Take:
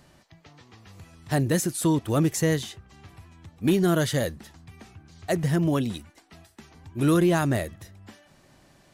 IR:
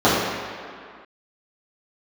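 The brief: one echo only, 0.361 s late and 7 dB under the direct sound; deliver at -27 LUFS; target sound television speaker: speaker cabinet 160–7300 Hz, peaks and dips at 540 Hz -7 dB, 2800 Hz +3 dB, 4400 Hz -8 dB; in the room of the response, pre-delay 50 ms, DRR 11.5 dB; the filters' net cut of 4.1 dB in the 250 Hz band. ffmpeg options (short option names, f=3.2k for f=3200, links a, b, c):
-filter_complex "[0:a]equalizer=f=250:t=o:g=-5,aecho=1:1:361:0.447,asplit=2[a][b];[1:a]atrim=start_sample=2205,adelay=50[c];[b][c]afir=irnorm=-1:irlink=0,volume=-37.5dB[d];[a][d]amix=inputs=2:normalize=0,highpass=f=160:w=0.5412,highpass=f=160:w=1.3066,equalizer=f=540:t=q:w=4:g=-7,equalizer=f=2.8k:t=q:w=4:g=3,equalizer=f=4.4k:t=q:w=4:g=-8,lowpass=f=7.3k:w=0.5412,lowpass=f=7.3k:w=1.3066,volume=1dB"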